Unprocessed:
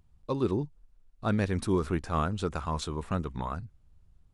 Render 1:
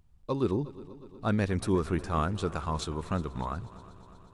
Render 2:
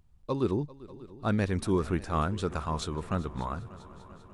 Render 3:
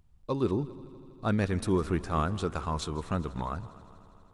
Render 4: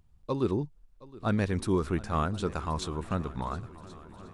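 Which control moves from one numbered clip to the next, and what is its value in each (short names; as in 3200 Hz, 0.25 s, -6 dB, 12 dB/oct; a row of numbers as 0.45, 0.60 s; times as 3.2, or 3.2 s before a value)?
multi-head echo, time: 121, 197, 81, 359 ms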